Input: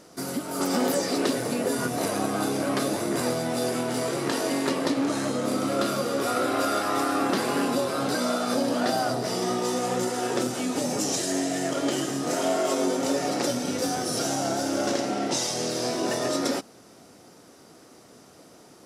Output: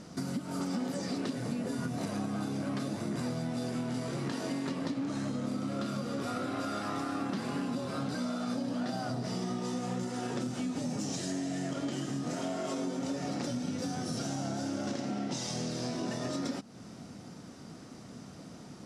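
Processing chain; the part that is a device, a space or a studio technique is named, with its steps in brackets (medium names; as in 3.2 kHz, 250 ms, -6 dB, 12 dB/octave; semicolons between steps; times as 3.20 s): jukebox (low-pass 7.6 kHz 12 dB/octave; resonant low shelf 280 Hz +8.5 dB, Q 1.5; compression 4:1, threshold -34 dBFS, peak gain reduction 15.5 dB)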